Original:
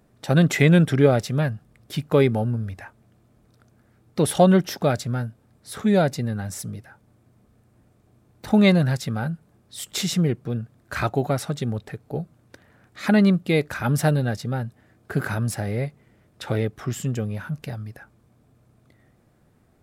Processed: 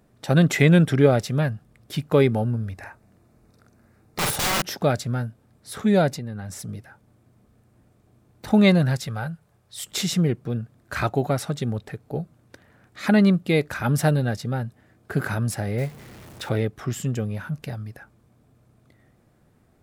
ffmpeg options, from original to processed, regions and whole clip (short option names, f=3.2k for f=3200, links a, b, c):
-filter_complex "[0:a]asettb=1/sr,asplit=3[a][b][c];[a]atrim=end=2.774[d];[b]atrim=start=2.77:end=4.62,asetpts=PTS-STARTPTS,afade=t=in:d=0.004:c=qsin,afade=t=out:st=1.846:d=0.004:c=qsin,equalizer=f=3.2k:w=7:g=-10.5,aeval=exprs='(mod(9.44*val(0)+1,2)-1)/9.44':c=same,asplit=2[e][f];[f]adelay=47,volume=-2.5dB[g];[e][g]amix=inputs=2:normalize=0,atrim=end_sample=81585[h];[c]atrim=start=4.616[i];[d][h]acrossfade=d=0.004:c1=hsin:c2=qsin[j];[j][i]acrossfade=d=0.004:c1=qsin:c2=hsin,asettb=1/sr,asplit=3[k][l][m];[k]atrim=end=6.164[n];[l]atrim=start=6.16:end=6.69,asetpts=PTS-STARTPTS,afade=t=in:d=0.004:c=qsin,afade=t=out:st=0.526:d=0.004:c=qsin,highshelf=f=6.1k:g=-5.5,acompressor=threshold=-30dB:ratio=3:attack=3.2:release=140:knee=1:detection=peak[o];[m]atrim=start=6.686[p];[n][o]acrossfade=d=0.004:c1=hsin:c2=qsin[q];[q][p]acrossfade=d=0.004:c1=qsin:c2=hsin,asettb=1/sr,asplit=3[r][s][t];[r]atrim=end=9.074[u];[s]atrim=start=9.07:end=9.84,asetpts=PTS-STARTPTS,afade=t=in:d=0.004:c=qsin,afade=t=out:st=0.766:d=0.004:c=qsin,highpass=51,equalizer=f=260:w=1.5:g=-13[v];[t]atrim=start=9.836[w];[u][v]acrossfade=d=0.004:c1=hsin:c2=qsin[x];[x][w]acrossfade=d=0.004:c1=qsin:c2=hsin,asettb=1/sr,asplit=3[y][z][aa];[y]atrim=end=15.784[ab];[z]atrim=start=15.78:end=16.49,asetpts=PTS-STARTPTS,afade=t=in:d=0.004:c=qsin,afade=t=out:st=0.706:d=0.004:c=qsin,aeval=exprs='val(0)+0.5*0.0106*sgn(val(0))':c=same,acrusher=bits=6:mode=log:mix=0:aa=0.000001[ac];[aa]atrim=start=16.486[ad];[ab][ac]acrossfade=d=0.004:c1=hsin:c2=qsin[ae];[ae][ad]acrossfade=d=0.004:c1=qsin:c2=hsin"